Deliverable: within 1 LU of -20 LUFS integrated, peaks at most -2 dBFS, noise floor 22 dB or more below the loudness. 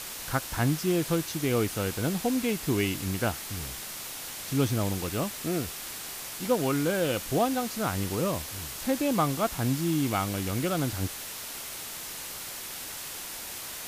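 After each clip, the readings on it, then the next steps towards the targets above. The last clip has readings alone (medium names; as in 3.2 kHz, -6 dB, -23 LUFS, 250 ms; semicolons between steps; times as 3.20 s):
noise floor -39 dBFS; noise floor target -52 dBFS; loudness -29.5 LUFS; peak level -12.5 dBFS; loudness target -20.0 LUFS
-> noise reduction 13 dB, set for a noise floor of -39 dBFS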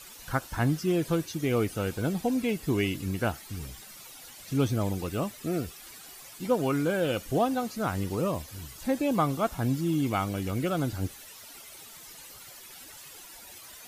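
noise floor -48 dBFS; noise floor target -52 dBFS
-> noise reduction 6 dB, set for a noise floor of -48 dBFS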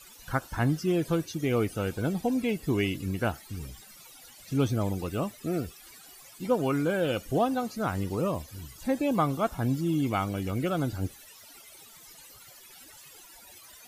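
noise floor -52 dBFS; loudness -29.5 LUFS; peak level -13.0 dBFS; loudness target -20.0 LUFS
-> trim +9.5 dB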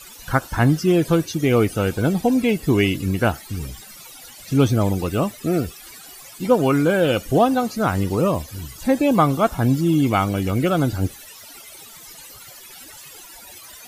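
loudness -20.0 LUFS; peak level -3.5 dBFS; noise floor -42 dBFS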